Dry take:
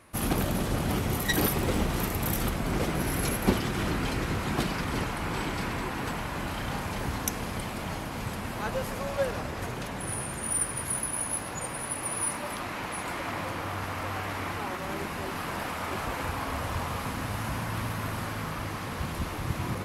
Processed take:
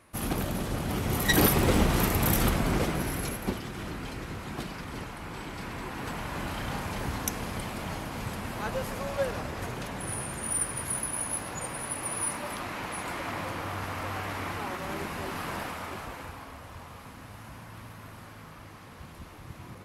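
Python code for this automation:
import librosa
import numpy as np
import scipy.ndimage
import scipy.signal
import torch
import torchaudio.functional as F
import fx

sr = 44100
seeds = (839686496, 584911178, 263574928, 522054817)

y = fx.gain(x, sr, db=fx.line((0.91, -3.0), (1.37, 4.0), (2.56, 4.0), (3.56, -8.0), (5.42, -8.0), (6.36, -1.0), (15.55, -1.0), (16.59, -13.0)))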